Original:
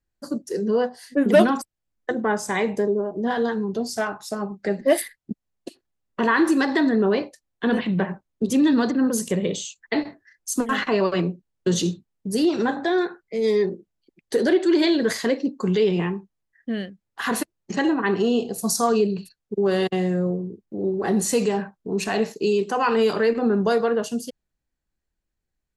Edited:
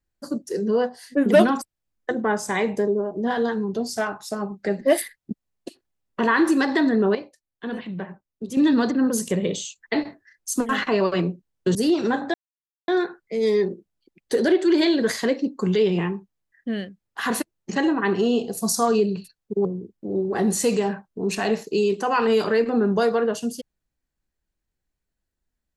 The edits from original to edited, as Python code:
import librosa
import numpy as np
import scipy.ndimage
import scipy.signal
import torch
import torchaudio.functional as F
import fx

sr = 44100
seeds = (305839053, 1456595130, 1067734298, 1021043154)

y = fx.edit(x, sr, fx.clip_gain(start_s=7.15, length_s=1.42, db=-9.0),
    fx.cut(start_s=11.75, length_s=0.55),
    fx.insert_silence(at_s=12.89, length_s=0.54),
    fx.cut(start_s=19.66, length_s=0.68), tone=tone)